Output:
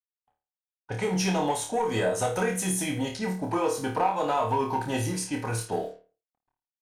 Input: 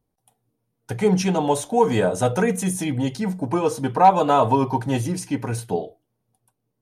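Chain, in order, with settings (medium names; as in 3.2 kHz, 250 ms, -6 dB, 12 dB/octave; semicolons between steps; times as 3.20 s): word length cut 10-bit, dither none; peaking EQ 170 Hz -9 dB 1.8 oct; compression 6:1, threshold -21 dBFS, peak gain reduction 11.5 dB; waveshaping leveller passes 1; flutter echo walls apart 4.6 m, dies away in 0.36 s; level-controlled noise filter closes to 1.1 kHz, open at -21.5 dBFS; trim -5 dB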